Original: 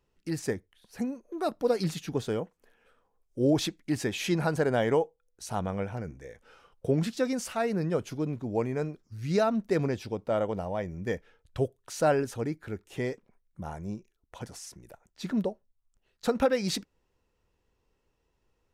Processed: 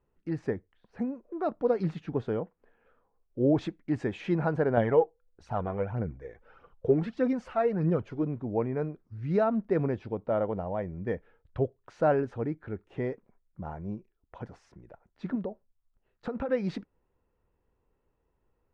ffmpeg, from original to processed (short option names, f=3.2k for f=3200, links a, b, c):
-filter_complex "[0:a]asettb=1/sr,asplit=3[a][b][c];[a]atrim=end=3.614[d];[b]atrim=start=3.61:end=4.21,asetpts=PTS-STARTPTS,afade=t=in:d=0.004:c=qsin,afade=t=out:st=0.596:d=0.004:c=qsin,equalizer=f=7.7k:t=o:w=0.56:g=8[e];[c]atrim=start=4.206[f];[d][e]acrossfade=d=0.004:c1=hsin:c2=qsin[g];[g][f]acrossfade=d=0.004:c1=qsin:c2=hsin,asettb=1/sr,asplit=3[h][i][j];[h]atrim=end=4.774[k];[i]atrim=start=4.77:end=8.23,asetpts=PTS-STARTPTS,afade=t=in:d=0.004:c=qsin,afade=t=out:st=3.456:d=0.004:c=qsin,aphaser=in_gain=1:out_gain=1:delay=3:decay=0.5:speed=1.6:type=triangular[l];[j]atrim=start=8.226[m];[k][l]acrossfade=d=0.004:c1=hsin:c2=qsin[n];[n][m]acrossfade=d=0.004:c1=qsin:c2=hsin,asettb=1/sr,asplit=3[o][p][q];[o]atrim=end=15.354[r];[p]atrim=start=15.35:end=16.49,asetpts=PTS-STARTPTS,afade=t=in:d=0.004:c=qsin,afade=t=out:st=1.136:d=0.004:c=qsin,acompressor=threshold=-29dB:ratio=6:attack=3.2:release=140:knee=1:detection=peak[s];[q]atrim=start=16.486[t];[r][s]acrossfade=d=0.004:c1=hsin:c2=qsin[u];[u][t]acrossfade=d=0.004:c1=qsin:c2=hsin,lowpass=1.6k"